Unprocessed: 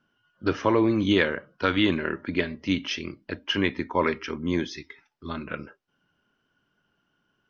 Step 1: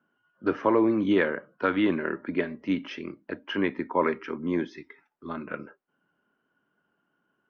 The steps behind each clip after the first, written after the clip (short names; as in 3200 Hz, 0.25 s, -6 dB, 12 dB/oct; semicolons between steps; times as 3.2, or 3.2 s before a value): three-band isolator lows -17 dB, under 160 Hz, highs -17 dB, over 2100 Hz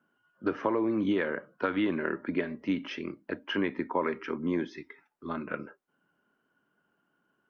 compressor, threshold -24 dBFS, peak gain reduction 7.5 dB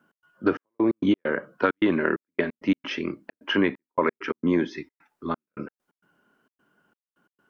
step gate "x.xxx..x.x.xxx" 132 bpm -60 dB; gain +7.5 dB